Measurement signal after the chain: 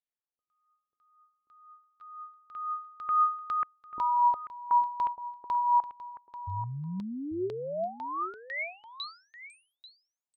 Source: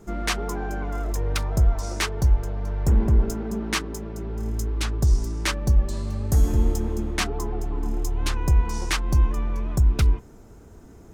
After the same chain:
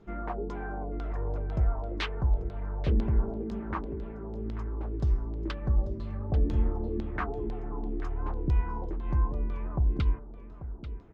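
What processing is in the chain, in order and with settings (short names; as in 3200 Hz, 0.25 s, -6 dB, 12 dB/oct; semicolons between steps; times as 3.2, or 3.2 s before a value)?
high shelf 3000 Hz -9 dB; LFO low-pass saw down 2 Hz 290–4100 Hz; echo 0.839 s -13 dB; gain -7.5 dB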